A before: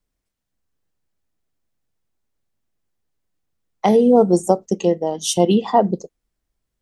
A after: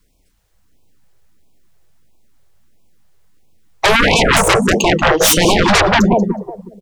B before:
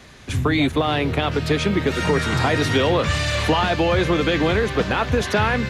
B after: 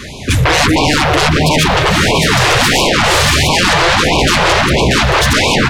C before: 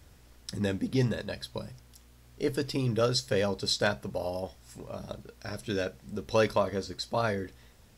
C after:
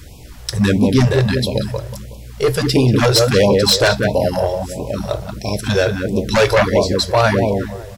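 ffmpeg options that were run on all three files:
-filter_complex "[0:a]acontrast=59,asplit=2[s0][s1];[s1]adelay=185,lowpass=f=1300:p=1,volume=0.668,asplit=2[s2][s3];[s3]adelay=185,lowpass=f=1300:p=1,volume=0.38,asplit=2[s4][s5];[s5]adelay=185,lowpass=f=1300:p=1,volume=0.38,asplit=2[s6][s7];[s7]adelay=185,lowpass=f=1300:p=1,volume=0.38,asplit=2[s8][s9];[s9]adelay=185,lowpass=f=1300:p=1,volume=0.38[s10];[s2][s4][s6][s8][s10]amix=inputs=5:normalize=0[s11];[s0][s11]amix=inputs=2:normalize=0,aeval=exprs='1.33*sin(PI/2*7.08*val(0)/1.33)':c=same,afftfilt=real='re*(1-between(b*sr/1024,210*pow(1600/210,0.5+0.5*sin(2*PI*1.5*pts/sr))/1.41,210*pow(1600/210,0.5+0.5*sin(2*PI*1.5*pts/sr))*1.41))':imag='im*(1-between(b*sr/1024,210*pow(1600/210,0.5+0.5*sin(2*PI*1.5*pts/sr))/1.41,210*pow(1600/210,0.5+0.5*sin(2*PI*1.5*pts/sr))*1.41))':win_size=1024:overlap=0.75,volume=0.335"

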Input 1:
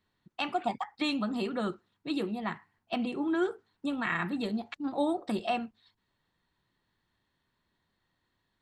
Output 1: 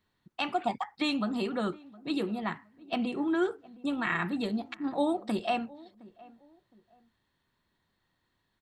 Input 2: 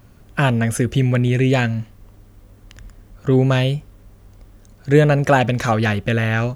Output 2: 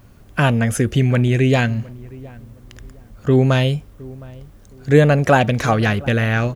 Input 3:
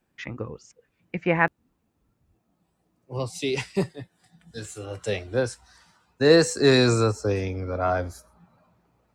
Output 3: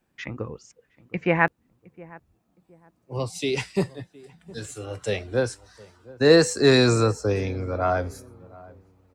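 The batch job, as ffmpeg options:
-filter_complex "[0:a]asplit=2[s0][s1];[s1]adelay=714,lowpass=f=940:p=1,volume=0.0944,asplit=2[s2][s3];[s3]adelay=714,lowpass=f=940:p=1,volume=0.32[s4];[s0][s2][s4]amix=inputs=3:normalize=0,volume=1.12"

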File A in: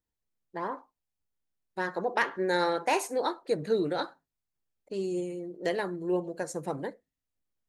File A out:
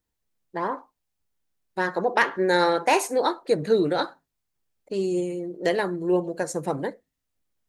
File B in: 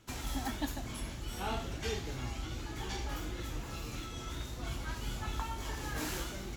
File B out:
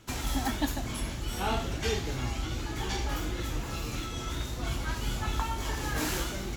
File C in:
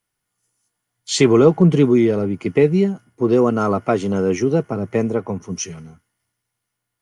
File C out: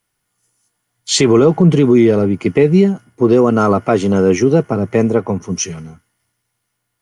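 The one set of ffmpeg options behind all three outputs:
-af "alimiter=level_in=2.37:limit=0.891:release=50:level=0:latency=1,volume=0.891"

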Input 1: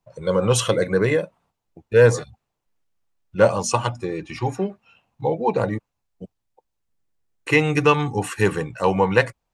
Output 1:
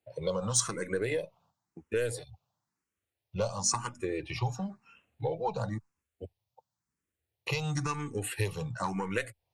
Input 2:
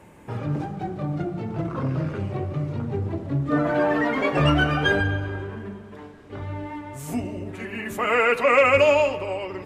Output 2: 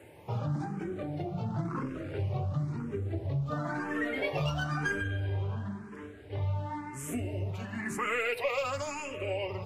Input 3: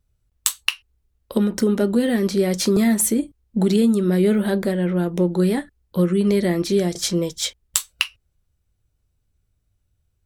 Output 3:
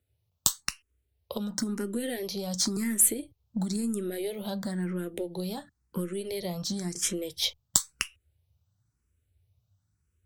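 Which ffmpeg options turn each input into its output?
-filter_complex "[0:a]asubboost=boost=3:cutoff=120,highpass=f=81:w=0.5412,highpass=f=81:w=1.3066,aeval=exprs='1*(cos(1*acos(clip(val(0)/1,-1,1)))-cos(1*PI/2))+0.282*(cos(2*acos(clip(val(0)/1,-1,1)))-cos(2*PI/2))':c=same,acrossover=split=4200[s0][s1];[s0]acompressor=threshold=0.0447:ratio=6[s2];[s2][s1]amix=inputs=2:normalize=0,asplit=2[s3][s4];[s4]afreqshift=0.97[s5];[s3][s5]amix=inputs=2:normalize=1"

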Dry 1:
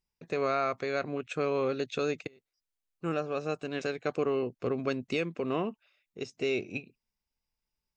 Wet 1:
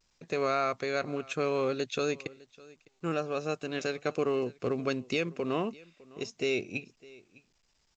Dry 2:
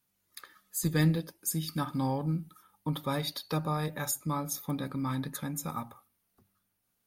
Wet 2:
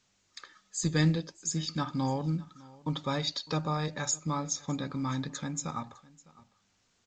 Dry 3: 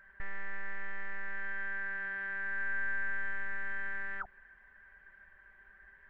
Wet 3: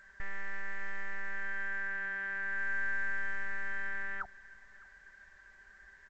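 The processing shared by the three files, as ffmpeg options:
-af "crystalizer=i=1.5:c=0,aecho=1:1:606:0.075" -ar 16000 -c:a pcm_alaw

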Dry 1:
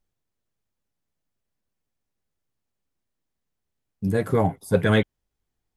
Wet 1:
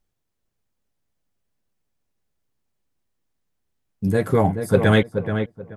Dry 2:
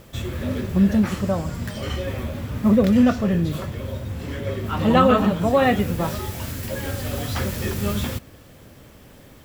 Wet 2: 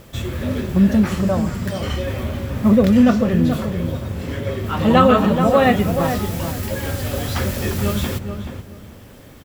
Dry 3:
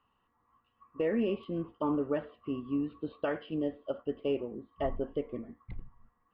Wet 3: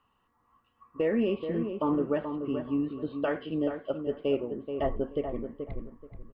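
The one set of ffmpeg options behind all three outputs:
-filter_complex "[0:a]asplit=2[s0][s1];[s1]adelay=430,lowpass=f=1600:p=1,volume=0.447,asplit=2[s2][s3];[s3]adelay=430,lowpass=f=1600:p=1,volume=0.24,asplit=2[s4][s5];[s5]adelay=430,lowpass=f=1600:p=1,volume=0.24[s6];[s0][s2][s4][s6]amix=inputs=4:normalize=0,volume=1.41"

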